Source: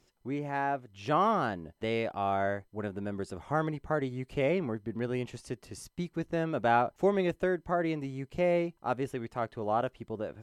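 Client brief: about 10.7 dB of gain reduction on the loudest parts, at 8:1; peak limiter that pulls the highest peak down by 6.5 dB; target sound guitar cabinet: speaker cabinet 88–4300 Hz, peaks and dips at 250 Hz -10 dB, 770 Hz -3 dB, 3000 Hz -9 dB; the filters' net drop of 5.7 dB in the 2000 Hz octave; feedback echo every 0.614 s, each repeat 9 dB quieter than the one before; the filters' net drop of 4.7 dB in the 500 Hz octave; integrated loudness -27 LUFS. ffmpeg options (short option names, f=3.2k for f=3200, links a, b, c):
-af "equalizer=f=500:t=o:g=-4.5,equalizer=f=2k:t=o:g=-6.5,acompressor=threshold=-35dB:ratio=8,alimiter=level_in=7.5dB:limit=-24dB:level=0:latency=1,volume=-7.5dB,highpass=88,equalizer=f=250:t=q:w=4:g=-10,equalizer=f=770:t=q:w=4:g=-3,equalizer=f=3k:t=q:w=4:g=-9,lowpass=f=4.3k:w=0.5412,lowpass=f=4.3k:w=1.3066,aecho=1:1:614|1228|1842|2456:0.355|0.124|0.0435|0.0152,volume=17dB"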